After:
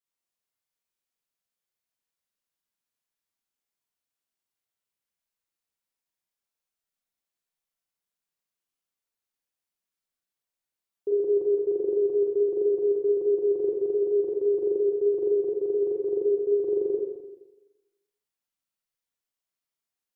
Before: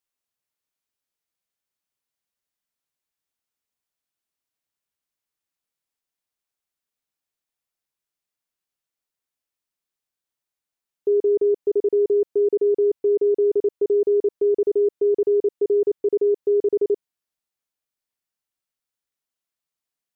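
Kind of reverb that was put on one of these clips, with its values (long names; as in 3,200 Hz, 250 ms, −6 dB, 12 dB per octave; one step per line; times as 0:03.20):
four-comb reverb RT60 1.1 s, combs from 33 ms, DRR −4.5 dB
level −8 dB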